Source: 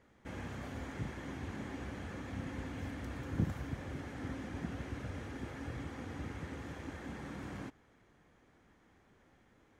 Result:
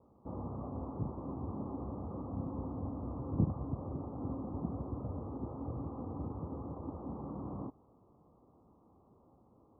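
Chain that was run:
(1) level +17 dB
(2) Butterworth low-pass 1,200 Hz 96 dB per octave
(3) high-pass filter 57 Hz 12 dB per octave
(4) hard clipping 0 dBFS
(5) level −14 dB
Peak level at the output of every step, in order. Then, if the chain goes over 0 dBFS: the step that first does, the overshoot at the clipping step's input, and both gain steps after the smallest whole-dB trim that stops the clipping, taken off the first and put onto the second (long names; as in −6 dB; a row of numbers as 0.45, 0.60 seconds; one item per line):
−2.0, −2.0, −3.0, −3.0, −17.0 dBFS
no step passes full scale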